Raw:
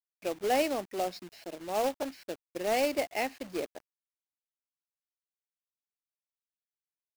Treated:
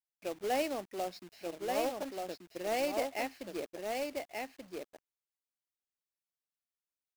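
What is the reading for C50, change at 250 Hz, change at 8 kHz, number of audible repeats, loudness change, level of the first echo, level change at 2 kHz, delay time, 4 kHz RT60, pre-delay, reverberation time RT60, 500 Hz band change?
none, -3.5 dB, -3.5 dB, 1, -5.0 dB, -3.5 dB, -3.5 dB, 1.183 s, none, none, none, -3.5 dB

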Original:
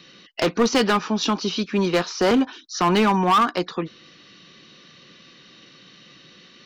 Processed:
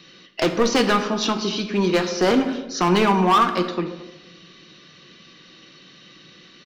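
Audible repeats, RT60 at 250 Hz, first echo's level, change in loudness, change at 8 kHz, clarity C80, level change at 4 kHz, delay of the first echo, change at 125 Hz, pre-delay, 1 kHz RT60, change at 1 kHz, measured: 1, 1.3 s, -21.5 dB, +1.0 dB, +1.0 dB, 11.0 dB, +0.5 dB, 0.223 s, +1.5 dB, 3 ms, 0.95 s, +1.0 dB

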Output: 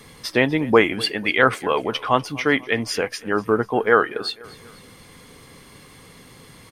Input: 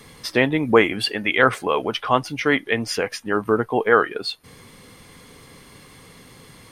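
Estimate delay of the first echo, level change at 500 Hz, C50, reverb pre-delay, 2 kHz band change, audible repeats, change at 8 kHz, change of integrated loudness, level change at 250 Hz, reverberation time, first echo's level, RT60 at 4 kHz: 0.246 s, 0.0 dB, none, none, 0.0 dB, 3, 0.0 dB, 0.0 dB, 0.0 dB, none, -21.0 dB, none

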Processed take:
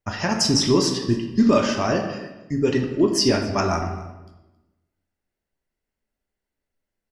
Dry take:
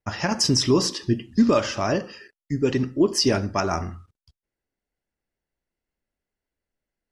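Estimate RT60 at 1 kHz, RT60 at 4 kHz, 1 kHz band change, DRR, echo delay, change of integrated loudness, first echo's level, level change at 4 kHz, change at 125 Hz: 1.0 s, 0.80 s, +2.0 dB, 3.0 dB, 0.27 s, +1.5 dB, -20.5 dB, +1.0 dB, +1.0 dB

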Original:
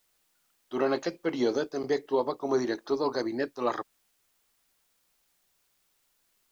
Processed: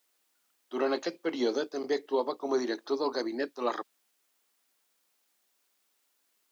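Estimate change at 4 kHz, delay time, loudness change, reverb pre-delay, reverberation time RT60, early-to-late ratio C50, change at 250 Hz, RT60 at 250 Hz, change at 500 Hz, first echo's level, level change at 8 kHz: +1.0 dB, none, -2.0 dB, none, none, none, -2.5 dB, none, -2.0 dB, none, n/a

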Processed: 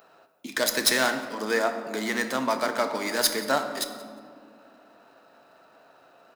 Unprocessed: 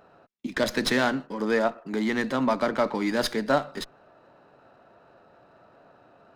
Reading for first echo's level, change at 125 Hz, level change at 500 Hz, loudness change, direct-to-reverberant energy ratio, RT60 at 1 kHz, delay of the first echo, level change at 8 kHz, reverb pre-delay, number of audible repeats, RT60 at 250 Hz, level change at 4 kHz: -20.5 dB, -8.5 dB, -1.5 dB, +0.5 dB, 7.0 dB, 1.9 s, 0.178 s, +11.5 dB, 3 ms, 1, 3.4 s, +5.0 dB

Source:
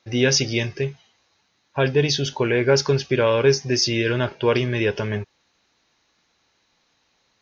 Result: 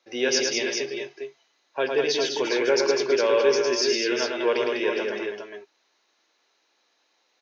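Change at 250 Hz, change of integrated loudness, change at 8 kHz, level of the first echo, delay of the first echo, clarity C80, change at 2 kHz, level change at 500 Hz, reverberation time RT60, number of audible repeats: -5.5 dB, -2.5 dB, n/a, -4.5 dB, 0.108 s, none, -2.5 dB, -1.5 dB, none, 3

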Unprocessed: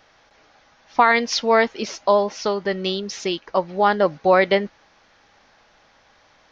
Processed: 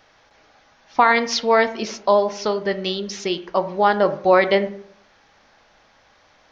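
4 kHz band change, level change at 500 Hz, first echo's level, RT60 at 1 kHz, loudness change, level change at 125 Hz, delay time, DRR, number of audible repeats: 0.0 dB, +1.0 dB, none, 0.60 s, +0.5 dB, -0.5 dB, none, 10.5 dB, none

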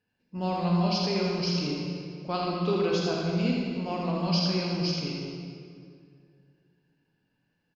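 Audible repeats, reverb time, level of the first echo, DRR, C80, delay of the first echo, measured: 1, 2.3 s, -5.0 dB, -3.5 dB, -1.0 dB, 80 ms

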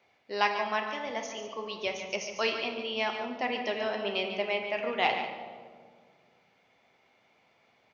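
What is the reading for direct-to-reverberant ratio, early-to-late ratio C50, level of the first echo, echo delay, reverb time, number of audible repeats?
2.5 dB, 5.0 dB, -9.0 dB, 0.144 s, 1.8 s, 1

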